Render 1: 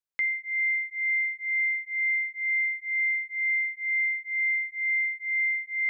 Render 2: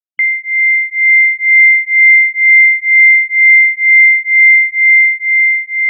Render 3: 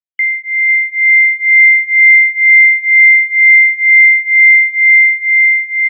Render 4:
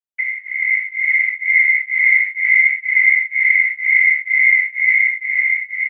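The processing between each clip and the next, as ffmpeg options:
-af "afftfilt=real='re*gte(hypot(re,im),0.00631)':imag='im*gte(hypot(re,im),0.00631)':win_size=1024:overlap=0.75,equalizer=f=2100:t=o:w=0.4:g=6.5,dynaudnorm=f=300:g=7:m=2,volume=2.51"
-filter_complex "[0:a]bandpass=f=2000:t=q:w=3.2:csg=0,asplit=2[s0][s1];[s1]aecho=0:1:498|996|1494|1992:0.501|0.15|0.0451|0.0135[s2];[s0][s2]amix=inputs=2:normalize=0,volume=0.891"
-filter_complex "[0:a]asplit=2[s0][s1];[s1]adelay=15,volume=0.631[s2];[s0][s2]amix=inputs=2:normalize=0,afftfilt=real='hypot(re,im)*cos(2*PI*random(0))':imag='hypot(re,im)*sin(2*PI*random(1))':win_size=512:overlap=0.75"

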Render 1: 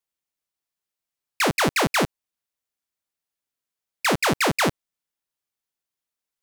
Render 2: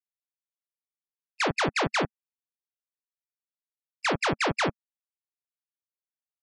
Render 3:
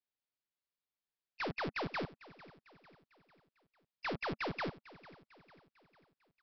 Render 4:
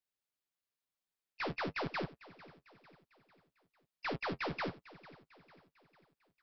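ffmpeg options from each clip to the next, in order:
-filter_complex "[0:a]afftfilt=real='re*gte(hypot(re,im),0.0501)':imag='im*gte(hypot(re,im),0.0501)':win_size=1024:overlap=0.75,equalizer=f=220:t=o:w=0.21:g=-9.5,acrossover=split=6300[s0][s1];[s1]acompressor=mode=upward:threshold=0.00224:ratio=2.5[s2];[s0][s2]amix=inputs=2:normalize=0,volume=0.596"
-af "alimiter=level_in=1.12:limit=0.0631:level=0:latency=1:release=222,volume=0.891,aresample=11025,asoftclip=type=hard:threshold=0.015,aresample=44100,aecho=1:1:449|898|1347|1796:0.119|0.057|0.0274|0.0131,volume=1.12"
-af "flanger=delay=5.2:depth=7.9:regen=-35:speed=1:shape=triangular,volume=1.58"

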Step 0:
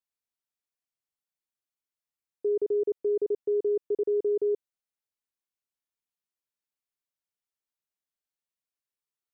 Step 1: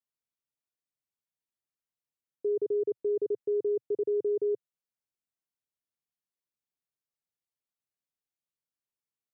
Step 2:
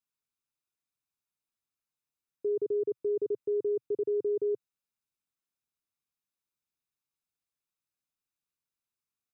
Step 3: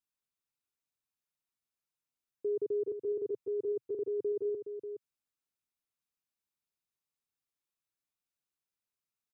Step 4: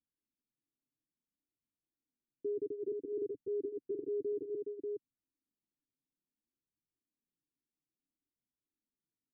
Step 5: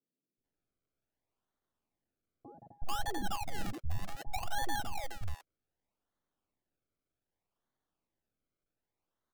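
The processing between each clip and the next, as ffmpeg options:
-af "equalizer=f=125:t=o:w=1:g=9,equalizer=f=250:t=o:w=1:g=3,equalizer=f=500:t=o:w=1:g=3,volume=0.501"
-af "aecho=1:1:0.8:0.36"
-af "aecho=1:1:418:0.355,volume=0.708"
-af "alimiter=level_in=3.16:limit=0.0631:level=0:latency=1,volume=0.316,flanger=delay=1:depth=6.9:regen=-25:speed=0.59:shape=triangular,lowpass=f=290:t=q:w=3.5,volume=1.78"
-filter_complex "[0:a]acrusher=samples=33:mix=1:aa=0.000001:lfo=1:lforange=33:lforate=0.65,aeval=exprs='abs(val(0))':c=same,acrossover=split=160|500[s0][s1][s2];[s0]adelay=370[s3];[s2]adelay=440[s4];[s3][s1][s4]amix=inputs=3:normalize=0,volume=2.11"

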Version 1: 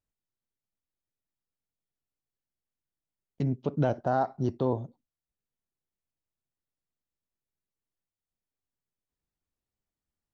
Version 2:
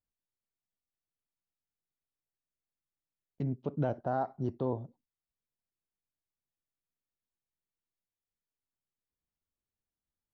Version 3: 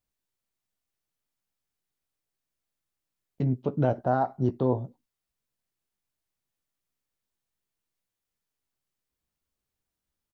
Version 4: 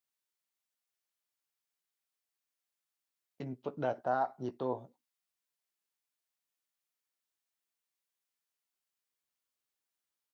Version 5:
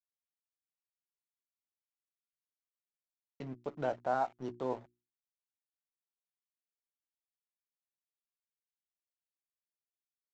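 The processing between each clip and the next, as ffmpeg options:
-af "aemphasis=mode=reproduction:type=75kf,volume=0.562"
-filter_complex "[0:a]asplit=2[s0][s1];[s1]adelay=16,volume=0.316[s2];[s0][s2]amix=inputs=2:normalize=0,volume=2.11"
-af "highpass=f=940:p=1,volume=0.841"
-af "aresample=16000,aeval=exprs='sgn(val(0))*max(abs(val(0))-0.00237,0)':c=same,aresample=44100,bandreject=f=60:t=h:w=6,bandreject=f=120:t=h:w=6,bandreject=f=180:t=h:w=6,bandreject=f=240:t=h:w=6,bandreject=f=300:t=h:w=6,bandreject=f=360:t=h:w=6"

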